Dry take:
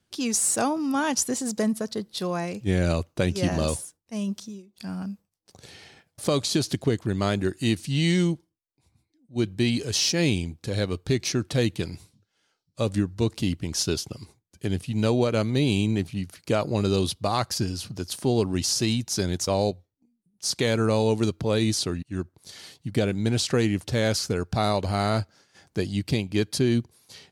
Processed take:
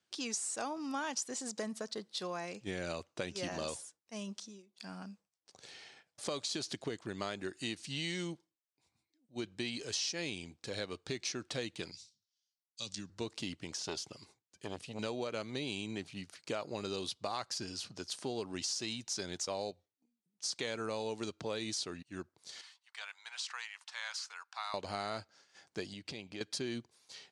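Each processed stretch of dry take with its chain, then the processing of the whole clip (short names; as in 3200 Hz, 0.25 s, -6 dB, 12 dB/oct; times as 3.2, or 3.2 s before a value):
11.91–13.1 EQ curve 200 Hz 0 dB, 440 Hz -12 dB, 1900 Hz -4 dB, 3600 Hz +9 dB, 5600 Hz +15 dB, 12000 Hz -3 dB + compressor 2:1, threshold -36 dBFS + three-band expander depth 100%
13.71–14.99 de-esser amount 60% + core saturation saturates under 540 Hz
22.61–24.74 Chebyshev high-pass 940 Hz, order 4 + high shelf 2100 Hz -8 dB
25.93–26.41 high shelf 7700 Hz -9 dB + compressor 4:1, threshold -30 dBFS
whole clip: HPF 640 Hz 6 dB/oct; compressor 3:1, threshold -31 dBFS; LPF 8500 Hz 24 dB/oct; gain -4.5 dB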